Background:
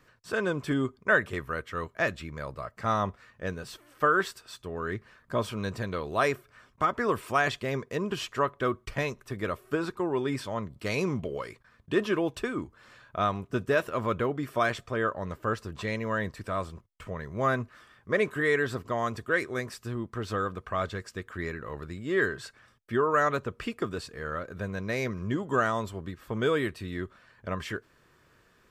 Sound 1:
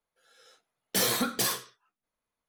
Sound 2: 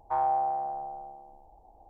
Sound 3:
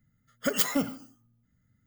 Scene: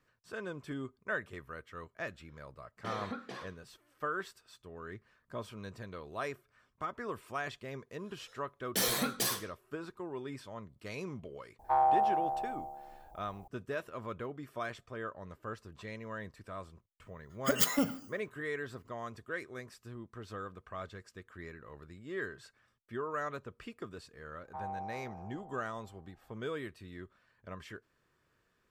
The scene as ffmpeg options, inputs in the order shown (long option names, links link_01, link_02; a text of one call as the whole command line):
ffmpeg -i bed.wav -i cue0.wav -i cue1.wav -i cue2.wav -filter_complex "[1:a]asplit=2[link_01][link_02];[2:a]asplit=2[link_03][link_04];[0:a]volume=-12.5dB[link_05];[link_01]highpass=130,lowpass=2200[link_06];[link_03]aemphasis=mode=production:type=75kf[link_07];[link_04]aecho=1:1:385:0.562[link_08];[link_06]atrim=end=2.48,asetpts=PTS-STARTPTS,volume=-11dB,afade=type=in:duration=0.004:curve=hsin,afade=type=out:start_time=2.476:duration=0.004:curve=hsin,adelay=1900[link_09];[link_02]atrim=end=2.48,asetpts=PTS-STARTPTS,volume=-4.5dB,afade=type=in:duration=0.004:curve=hsin,afade=type=out:start_time=2.476:duration=0.004:curve=hsin,adelay=7810[link_10];[link_07]atrim=end=1.89,asetpts=PTS-STARTPTS,volume=-0.5dB,afade=type=in:duration=0.004:curve=hsin,afade=type=out:start_time=1.886:duration=0.004:curve=hsin,adelay=11590[link_11];[3:a]atrim=end=1.86,asetpts=PTS-STARTPTS,volume=-2.5dB,afade=type=in:duration=0.004:curve=hsin,afade=type=out:start_time=1.856:duration=0.004:curve=hsin,adelay=17020[link_12];[link_08]atrim=end=1.89,asetpts=PTS-STARTPTS,volume=-14.5dB,afade=type=in:duration=0.004:curve=hsin,afade=type=out:start_time=1.886:duration=0.004:curve=hsin,adelay=24430[link_13];[link_05][link_09][link_10][link_11][link_12][link_13]amix=inputs=6:normalize=0" out.wav